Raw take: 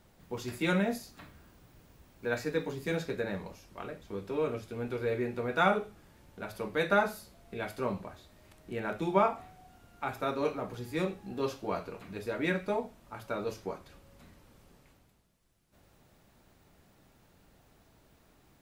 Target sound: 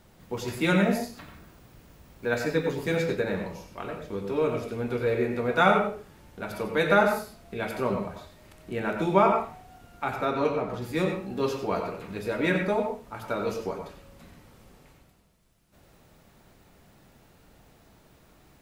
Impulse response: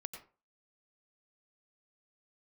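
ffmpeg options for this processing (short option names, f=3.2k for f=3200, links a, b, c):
-filter_complex "[0:a]asettb=1/sr,asplit=3[a][b][c];[a]atrim=end=10.144[d];[b]atrim=start=10.14:end=10.82,asetpts=PTS-STARTPTS,afade=t=in:d=0.004:c=qsin,afade=t=out:st=0.676:d=0.004:c=qsin,highshelf=f=6.9k:g=-10[e];[c]atrim=start=10.816[f];[d][e]acrossfade=d=0.004:c1=hsin:c2=qsin[g];[g][f]acrossfade=d=0.004:c1=qsin:c2=hsin[h];[1:a]atrim=start_sample=2205[i];[h][i]afir=irnorm=-1:irlink=0,volume=9dB"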